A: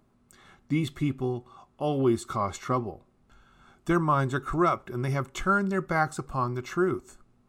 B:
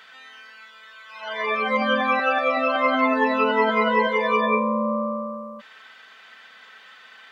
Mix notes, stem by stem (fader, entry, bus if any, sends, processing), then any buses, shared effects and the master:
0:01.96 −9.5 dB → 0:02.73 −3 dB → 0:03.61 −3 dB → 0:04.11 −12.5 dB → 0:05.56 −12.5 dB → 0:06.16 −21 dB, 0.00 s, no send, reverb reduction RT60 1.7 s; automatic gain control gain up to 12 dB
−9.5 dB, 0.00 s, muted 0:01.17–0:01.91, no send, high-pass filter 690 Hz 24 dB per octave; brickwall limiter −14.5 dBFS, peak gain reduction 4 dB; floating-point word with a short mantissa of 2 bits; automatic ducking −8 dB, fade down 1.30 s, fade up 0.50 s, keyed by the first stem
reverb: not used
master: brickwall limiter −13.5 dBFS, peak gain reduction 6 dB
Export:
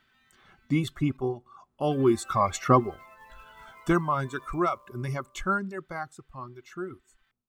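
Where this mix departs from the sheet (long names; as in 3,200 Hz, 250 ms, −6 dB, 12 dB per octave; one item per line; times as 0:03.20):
stem B −9.5 dB → −19.5 dB
master: missing brickwall limiter −13.5 dBFS, peak gain reduction 6 dB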